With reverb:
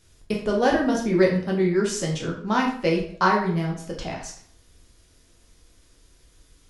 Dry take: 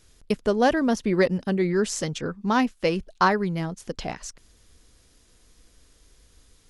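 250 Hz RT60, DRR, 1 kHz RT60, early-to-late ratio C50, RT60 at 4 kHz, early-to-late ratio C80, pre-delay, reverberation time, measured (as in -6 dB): 0.55 s, -1.5 dB, 0.55 s, 5.5 dB, 0.45 s, 9.5 dB, 8 ms, 0.55 s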